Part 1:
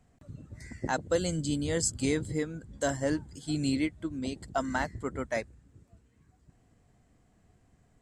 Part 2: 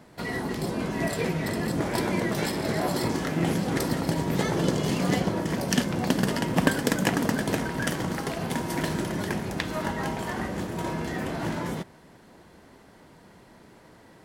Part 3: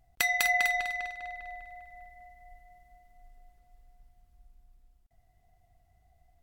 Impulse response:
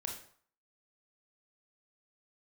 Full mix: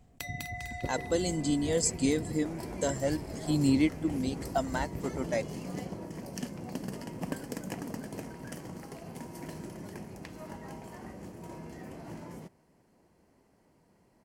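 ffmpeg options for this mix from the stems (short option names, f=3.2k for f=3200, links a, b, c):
-filter_complex "[0:a]aphaser=in_gain=1:out_gain=1:delay=4.1:decay=0.39:speed=0.26:type=sinusoidal,volume=0dB[a];[1:a]equalizer=f=3.6k:t=o:w=0.36:g=-12,adelay=650,volume=-13dB[b];[2:a]acompressor=threshold=-31dB:ratio=6,volume=-4.5dB[c];[a][b][c]amix=inputs=3:normalize=0,equalizer=f=1.5k:w=1.5:g=-7"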